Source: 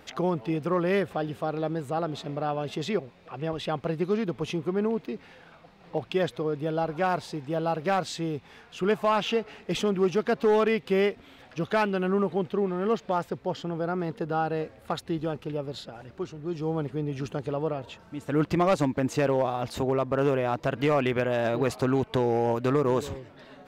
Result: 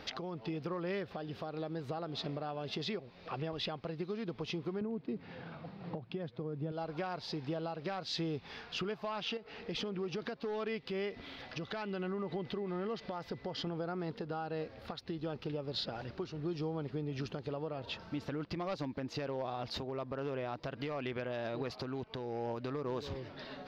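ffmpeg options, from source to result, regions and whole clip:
ffmpeg -i in.wav -filter_complex "[0:a]asettb=1/sr,asplit=3[link_01][link_02][link_03];[link_01]atrim=end=4.814[link_04];[link_02]atrim=start=4.81:end=6.72,asetpts=PTS-STARTPTS,afade=type=in:duration=0.004:curve=qsin,afade=type=out:start_time=1.906:duration=0.004:curve=qsin,highpass=frequency=110:width=0.5412,highpass=frequency=110:width=1.3066,aemphasis=mode=reproduction:type=riaa[link_05];[link_03]atrim=start=6.716[link_06];[link_04][link_05]acrossfade=duration=0.004:curve1=hsin:curve2=qsin[link_07];[link_07][link_06]acrossfade=duration=0.004:curve1=qsin:curve2=hsin,asettb=1/sr,asplit=3[link_08][link_09][link_10];[link_08]atrim=end=9.374[link_11];[link_09]atrim=start=9.37:end=10.22,asetpts=PTS-STARTPTS,afade=type=in:duration=0.004:curve=qsin,afade=type=out:start_time=0.846:duration=0.004:curve=qsin,highshelf=frequency=5400:gain=-5.5,acompressor=threshold=-36dB:ratio=2:attack=3.2:release=140:knee=1:detection=peak,aeval=exprs='val(0)+0.00224*sin(2*PI*470*n/s)':channel_layout=same[link_12];[link_10]atrim=start=10.216[link_13];[link_11][link_12]acrossfade=duration=0.004:curve1=hsin:curve2=qsin[link_14];[link_14][link_13]acrossfade=duration=0.004:curve1=qsin:curve2=hsin,asettb=1/sr,asplit=3[link_15][link_16][link_17];[link_15]atrim=end=10.824[link_18];[link_16]atrim=start=10.82:end=13.67,asetpts=PTS-STARTPTS,afade=type=in:duration=0.004:curve=qsin,afade=type=out:start_time=2.846:duration=0.004:curve=qsin,acompressor=threshold=-36dB:ratio=2.5:attack=3.2:release=140:knee=1:detection=peak,aeval=exprs='val(0)+0.000891*sin(2*PI*2000*n/s)':channel_layout=same[link_19];[link_17]atrim=start=13.666[link_20];[link_18][link_19]acrossfade=duration=0.004:curve1=hsin:curve2=qsin[link_21];[link_21][link_20]acrossfade=duration=0.004:curve1=qsin:curve2=hsin,acompressor=threshold=-35dB:ratio=10,alimiter=level_in=6.5dB:limit=-24dB:level=0:latency=1:release=312,volume=-6.5dB,highshelf=frequency=6300:width_type=q:width=3:gain=-10,volume=1.5dB" out.wav

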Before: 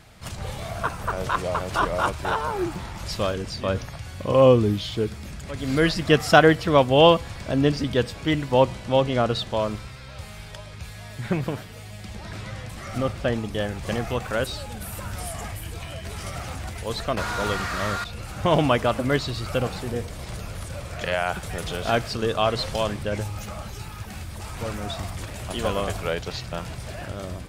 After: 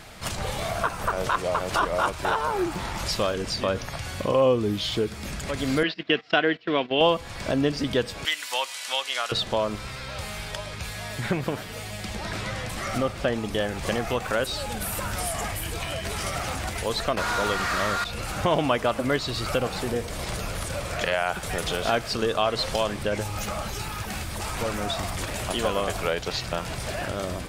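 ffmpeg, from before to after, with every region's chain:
ffmpeg -i in.wav -filter_complex "[0:a]asettb=1/sr,asplit=3[link_01][link_02][link_03];[link_01]atrim=end=5.834[link_04];[link_02]atrim=start=5.83:end=7.01,asetpts=PTS-STARTPTS,afade=type=in:duration=0.004:curve=qsin,afade=type=out:start_time=1.176:duration=0.004:curve=qsin,agate=range=-19dB:threshold=-26dB:ratio=16:release=100:detection=peak,highpass=250,equalizer=frequency=550:width_type=q:width=4:gain=-9,equalizer=frequency=850:width_type=q:width=4:gain=-9,equalizer=frequency=1200:width_type=q:width=4:gain=-8,equalizer=frequency=2800:width_type=q:width=4:gain=3,lowpass=frequency=3900:width=0.5412,lowpass=frequency=3900:width=1.3066[link_05];[link_03]atrim=start=7.006[link_06];[link_04][link_05]acrossfade=duration=0.004:curve1=hsin:curve2=qsin[link_07];[link_07][link_06]acrossfade=duration=0.004:curve1=qsin:curve2=hsin,asettb=1/sr,asplit=3[link_08][link_09][link_10];[link_08]atrim=end=8.254[link_11];[link_09]atrim=start=8.25:end=9.32,asetpts=PTS-STARTPTS,afade=type=in:duration=0.004:curve=qsin,afade=type=out:start_time=1.066:duration=0.004:curve=qsin,highpass=1500,highshelf=frequency=4700:gain=10.5[link_12];[link_10]atrim=start=9.316[link_13];[link_11][link_12]acrossfade=duration=0.004:curve1=hsin:curve2=qsin[link_14];[link_14][link_13]acrossfade=duration=0.004:curve1=qsin:curve2=hsin,equalizer=frequency=90:width_type=o:width=2.3:gain=-7.5,acompressor=threshold=-35dB:ratio=2,volume=8dB" out.wav

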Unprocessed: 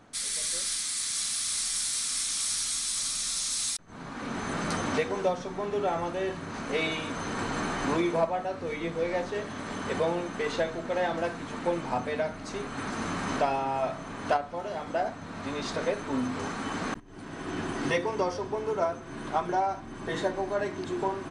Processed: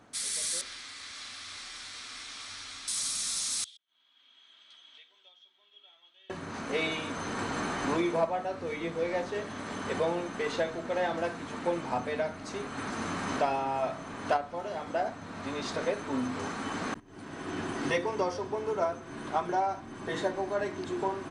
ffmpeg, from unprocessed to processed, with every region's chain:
ffmpeg -i in.wav -filter_complex "[0:a]asettb=1/sr,asplit=3[link_01][link_02][link_03];[link_01]atrim=end=0.614[link_04];[link_02]atrim=start=0.61:end=2.88,asetpts=PTS-STARTPTS,afade=type=in:duration=0.004:curve=qsin,afade=type=out:start_time=2.266:duration=0.004:curve=qsin,lowpass=2900,equalizer=frequency=170:width_type=o:width=0.47:gain=-14.5[link_05];[link_03]atrim=start=2.876[link_06];[link_04][link_05]acrossfade=duration=0.004:curve1=hsin:curve2=qsin[link_07];[link_07][link_06]acrossfade=duration=0.004:curve1=qsin:curve2=hsin,asettb=1/sr,asplit=3[link_08][link_09][link_10];[link_08]atrim=end=3.644[link_11];[link_09]atrim=start=3.64:end=6.3,asetpts=PTS-STARTPTS,afade=type=in:duration=0.004:curve=qsin,afade=type=out:start_time=2.656:duration=0.004:curve=qsin,bandpass=frequency=3300:width_type=q:width=20,aecho=1:1:3.1:0.32,atrim=end_sample=117306[link_12];[link_10]atrim=start=6.296[link_13];[link_11][link_12]acrossfade=duration=0.004:curve1=hsin:curve2=qsin[link_14];[link_14][link_13]acrossfade=duration=0.004:curve1=qsin:curve2=hsin,highpass=51,equalizer=frequency=150:width_type=o:width=0.77:gain=-2.5,volume=-1.5dB" out.wav

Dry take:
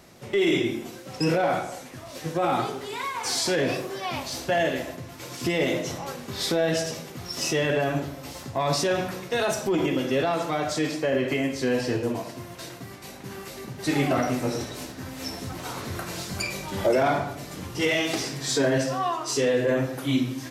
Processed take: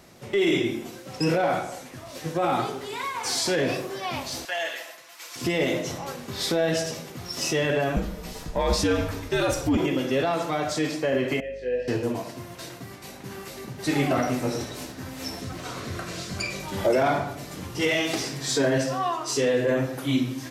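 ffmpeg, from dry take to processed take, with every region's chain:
ffmpeg -i in.wav -filter_complex "[0:a]asettb=1/sr,asplit=3[link_01][link_02][link_03];[link_01]atrim=end=4.454[link_04];[link_02]atrim=start=4.45:end=5.36,asetpts=PTS-STARTPTS,afade=type=in:duration=0.004:curve=qsin,afade=type=out:start_time=0.906:duration=0.004:curve=qsin,highpass=1100,aecho=1:1:6.1:0.47,atrim=end_sample=40131[link_05];[link_03]atrim=start=5.356[link_06];[link_04][link_05]acrossfade=duration=0.004:curve1=hsin:curve2=qsin[link_07];[link_07][link_06]acrossfade=duration=0.004:curve1=qsin:curve2=hsin,asettb=1/sr,asplit=3[link_08][link_09][link_10];[link_08]atrim=end=7.964[link_11];[link_09]atrim=start=7.96:end=9.77,asetpts=PTS-STARTPTS,afade=type=in:duration=0.004:curve=qsin,afade=type=out:start_time=1.806:duration=0.004:curve=qsin,lowshelf=frequency=320:gain=4.5,afreqshift=-89[link_12];[link_10]atrim=start=9.766[link_13];[link_11][link_12]acrossfade=duration=0.004:curve1=hsin:curve2=qsin[link_14];[link_14][link_13]acrossfade=duration=0.004:curve1=qsin:curve2=hsin,asettb=1/sr,asplit=3[link_15][link_16][link_17];[link_15]atrim=end=11.404[link_18];[link_16]atrim=start=11.4:end=11.88,asetpts=PTS-STARTPTS,afade=type=in:duration=0.004:curve=qsin,afade=type=out:start_time=0.476:duration=0.004:curve=qsin,asplit=3[link_19][link_20][link_21];[link_19]bandpass=frequency=530:width_type=q:width=8,volume=0dB[link_22];[link_20]bandpass=frequency=1840:width_type=q:width=8,volume=-6dB[link_23];[link_21]bandpass=frequency=2480:width_type=q:width=8,volume=-9dB[link_24];[link_22][link_23][link_24]amix=inputs=3:normalize=0,asplit=2[link_25][link_26];[link_26]adelay=24,volume=-2dB[link_27];[link_25][link_27]amix=inputs=2:normalize=0,atrim=end_sample=21168,aeval=exprs='val(0)+0.00398*(sin(2*PI*50*n/s)+sin(2*PI*2*50*n/s)/2+sin(2*PI*3*50*n/s)/3+sin(2*PI*4*50*n/s)/4+sin(2*PI*5*50*n/s)/5)':channel_layout=same[link_28];[link_17]atrim=start=11.876[link_29];[link_18][link_28]acrossfade=duration=0.004:curve1=hsin:curve2=qsin[link_30];[link_30][link_29]acrossfade=duration=0.004:curve1=qsin:curve2=hsin,asettb=1/sr,asplit=3[link_31][link_32][link_33];[link_31]atrim=end=15.414[link_34];[link_32]atrim=start=15.41:end=16.6,asetpts=PTS-STARTPTS,afade=type=in:duration=0.004:curve=qsin,afade=type=out:start_time=1.186:duration=0.004:curve=qsin,bandreject=frequency=870:width=5.7,acrossover=split=8700[link_35][link_36];[link_36]acompressor=threshold=-56dB:ratio=4:attack=1:release=60[link_37];[link_35][link_37]amix=inputs=2:normalize=0[link_38];[link_33]atrim=start=16.596[link_39];[link_34][link_38]acrossfade=duration=0.004:curve1=hsin:curve2=qsin[link_40];[link_40][link_39]acrossfade=duration=0.004:curve1=qsin:curve2=hsin" out.wav

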